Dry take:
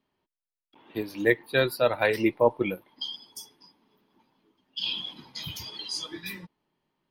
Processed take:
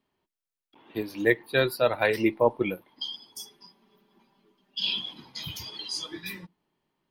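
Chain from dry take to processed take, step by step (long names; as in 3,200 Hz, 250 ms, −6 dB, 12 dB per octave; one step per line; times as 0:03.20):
0:03.39–0:04.99: comb filter 5.1 ms, depth 93%
on a send: convolution reverb RT60 0.15 s, pre-delay 3 ms, DRR 21.5 dB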